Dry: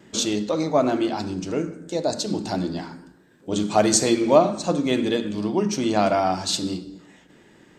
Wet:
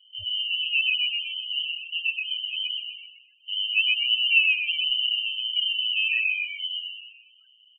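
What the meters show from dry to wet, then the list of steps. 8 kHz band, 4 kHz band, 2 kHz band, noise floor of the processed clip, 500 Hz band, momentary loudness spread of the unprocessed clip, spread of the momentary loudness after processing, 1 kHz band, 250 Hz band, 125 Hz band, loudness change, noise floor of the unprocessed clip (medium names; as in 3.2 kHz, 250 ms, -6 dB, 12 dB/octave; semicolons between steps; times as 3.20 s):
under -40 dB, +9.5 dB, +11.5 dB, -58 dBFS, under -40 dB, 11 LU, 12 LU, under -40 dB, under -40 dB, under -30 dB, -0.5 dB, -54 dBFS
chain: frequency inversion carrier 3.3 kHz; frequency-shifting echo 126 ms, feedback 39%, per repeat -120 Hz, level -3 dB; loudest bins only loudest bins 8; trim -4 dB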